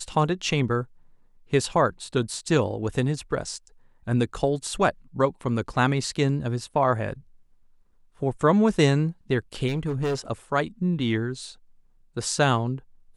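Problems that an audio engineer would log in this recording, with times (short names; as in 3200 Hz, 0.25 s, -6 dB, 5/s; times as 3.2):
9.68–10.15 clipped -22 dBFS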